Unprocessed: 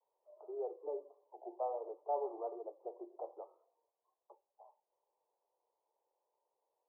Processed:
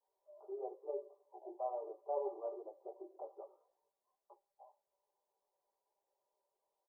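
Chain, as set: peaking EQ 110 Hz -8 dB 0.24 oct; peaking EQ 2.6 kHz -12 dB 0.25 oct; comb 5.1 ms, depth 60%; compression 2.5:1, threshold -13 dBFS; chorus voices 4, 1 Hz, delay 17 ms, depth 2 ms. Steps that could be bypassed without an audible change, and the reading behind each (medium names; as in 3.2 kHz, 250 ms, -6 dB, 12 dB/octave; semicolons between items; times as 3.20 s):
peaking EQ 110 Hz: input has nothing below 300 Hz; peaking EQ 2.6 kHz: input has nothing above 1.2 kHz; compression, threshold -13 dBFS: peak at its input -24.5 dBFS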